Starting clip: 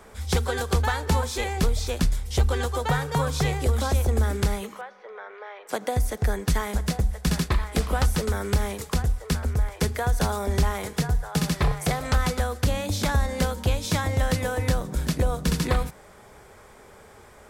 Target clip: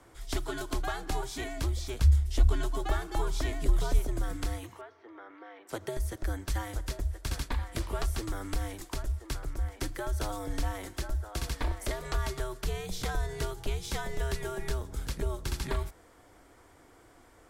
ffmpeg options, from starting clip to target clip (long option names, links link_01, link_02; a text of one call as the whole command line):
ffmpeg -i in.wav -filter_complex "[0:a]asettb=1/sr,asplit=3[link_01][link_02][link_03];[link_01]atrim=end=1.994[link_04];[link_02]atrim=start=1.99:end=3.99,asetpts=PTS-STARTPTS,afade=type=in:duration=0.004:curve=qsin,afade=type=out:start_time=1.996:duration=0.004:curve=qsin,lowshelf=frequency=120:gain=11[link_05];[link_03]atrim=start=3.986[link_06];[link_04][link_05]acrossfade=duration=0.004:curve1=hsin:curve2=qsin[link_07];[link_07][link_06]acrossfade=duration=0.004:curve1=qsin:curve2=hsin,afreqshift=-110,volume=-8.5dB" out.wav